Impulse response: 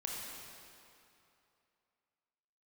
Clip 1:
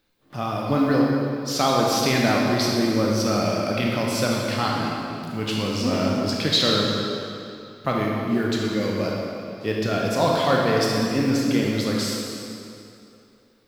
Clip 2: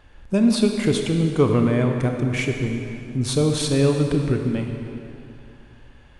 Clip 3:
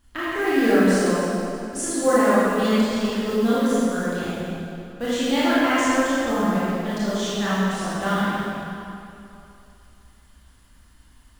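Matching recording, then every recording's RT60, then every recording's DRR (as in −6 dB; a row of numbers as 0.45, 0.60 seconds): 1; 2.8, 2.7, 2.8 seconds; −3.0, 3.0, −11.5 decibels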